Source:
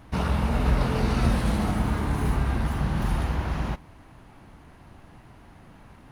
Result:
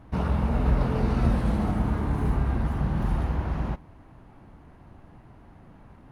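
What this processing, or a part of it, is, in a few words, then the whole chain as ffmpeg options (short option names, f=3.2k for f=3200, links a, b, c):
through cloth: -af "highshelf=f=1.9k:g=-12"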